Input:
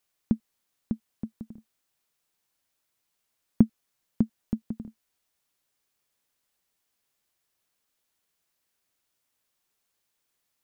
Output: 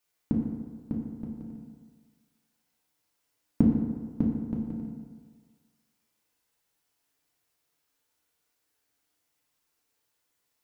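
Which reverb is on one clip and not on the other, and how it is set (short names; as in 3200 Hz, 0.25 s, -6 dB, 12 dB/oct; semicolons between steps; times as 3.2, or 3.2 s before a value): FDN reverb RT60 1.6 s, low-frequency decay 0.85×, high-frequency decay 0.55×, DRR -3 dB; gain -3 dB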